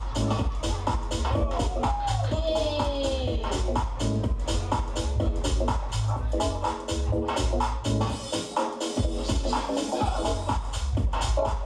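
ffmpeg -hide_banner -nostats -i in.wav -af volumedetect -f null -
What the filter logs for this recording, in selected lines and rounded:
mean_volume: -26.1 dB
max_volume: -13.3 dB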